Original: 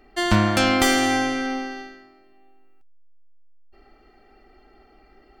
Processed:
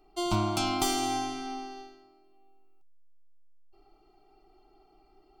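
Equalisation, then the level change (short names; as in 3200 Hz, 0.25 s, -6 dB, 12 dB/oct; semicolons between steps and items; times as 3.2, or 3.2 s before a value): fixed phaser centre 350 Hz, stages 8; -5.5 dB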